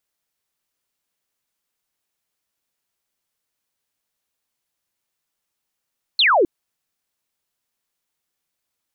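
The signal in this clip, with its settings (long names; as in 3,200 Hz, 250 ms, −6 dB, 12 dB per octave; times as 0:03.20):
single falling chirp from 4,400 Hz, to 310 Hz, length 0.26 s sine, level −12 dB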